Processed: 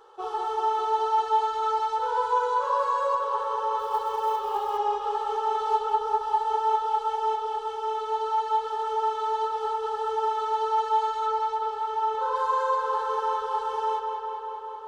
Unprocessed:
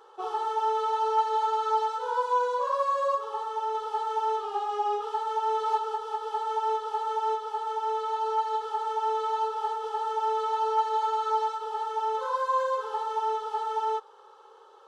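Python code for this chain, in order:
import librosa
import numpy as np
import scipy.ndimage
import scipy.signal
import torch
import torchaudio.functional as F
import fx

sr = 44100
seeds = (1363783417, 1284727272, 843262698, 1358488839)

y = fx.low_shelf(x, sr, hz=120.0, db=11.0)
y = fx.echo_filtered(y, sr, ms=199, feedback_pct=80, hz=4700.0, wet_db=-5.0)
y = fx.quant_float(y, sr, bits=4, at=(3.79, 4.78))
y = fx.high_shelf(y, sr, hz=4700.0, db=-6.5, at=(11.26, 12.36))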